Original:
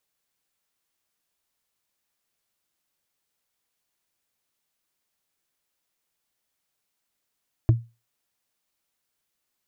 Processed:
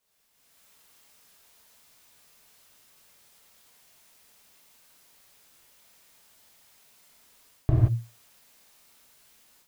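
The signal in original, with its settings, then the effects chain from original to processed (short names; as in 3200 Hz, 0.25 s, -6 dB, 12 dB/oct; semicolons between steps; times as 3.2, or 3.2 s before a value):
wood hit, lowest mode 116 Hz, decay 0.27 s, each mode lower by 8.5 dB, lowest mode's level -10 dB
reverse; compressor 8:1, threshold -29 dBFS; reverse; non-linear reverb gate 0.2 s flat, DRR -7.5 dB; AGC gain up to 12 dB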